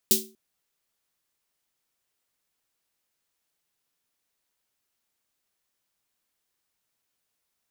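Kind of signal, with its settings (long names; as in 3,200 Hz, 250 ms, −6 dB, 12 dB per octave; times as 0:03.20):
synth snare length 0.24 s, tones 220 Hz, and 380 Hz, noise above 3,400 Hz, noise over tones 10.5 dB, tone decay 0.39 s, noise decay 0.25 s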